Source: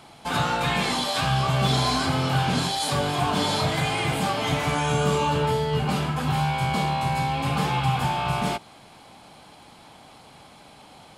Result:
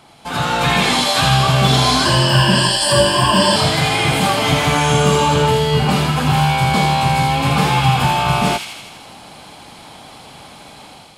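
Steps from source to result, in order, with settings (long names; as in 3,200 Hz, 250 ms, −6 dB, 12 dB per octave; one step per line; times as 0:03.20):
0:02.05–0:03.56: EQ curve with evenly spaced ripples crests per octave 1.3, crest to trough 18 dB
automatic gain control gain up to 8.5 dB
delay with a high-pass on its return 82 ms, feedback 67%, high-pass 2,300 Hz, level −3.5 dB
level +1 dB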